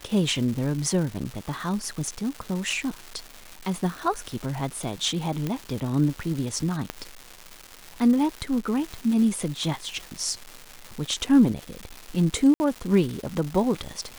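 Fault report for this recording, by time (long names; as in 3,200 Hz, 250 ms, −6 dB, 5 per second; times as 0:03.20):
surface crackle 450 per second −31 dBFS
0:05.47: click −15 dBFS
0:06.90: click −13 dBFS
0:12.54–0:12.60: drop-out 60 ms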